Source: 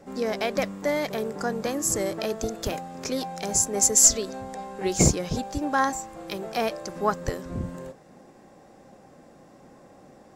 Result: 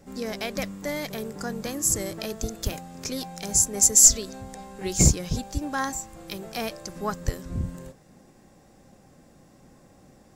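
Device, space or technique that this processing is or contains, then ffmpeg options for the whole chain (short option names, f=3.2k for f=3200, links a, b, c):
smiley-face EQ: -af "lowshelf=f=110:g=8,equalizer=f=660:t=o:w=2.9:g=-7,highshelf=f=8.5k:g=6.5"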